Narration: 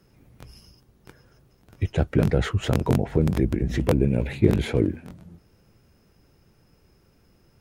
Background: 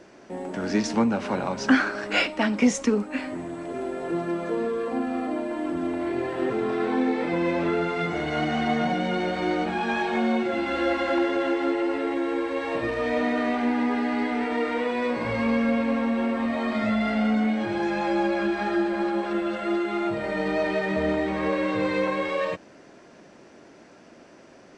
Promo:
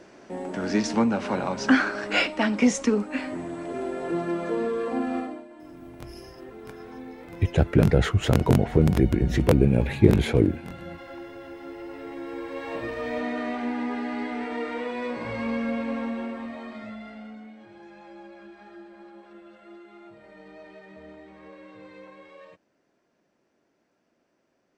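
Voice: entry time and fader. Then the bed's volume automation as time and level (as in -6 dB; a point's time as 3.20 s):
5.60 s, +2.0 dB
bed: 5.18 s 0 dB
5.48 s -17 dB
11.49 s -17 dB
12.71 s -5 dB
16.04 s -5 dB
17.50 s -21.5 dB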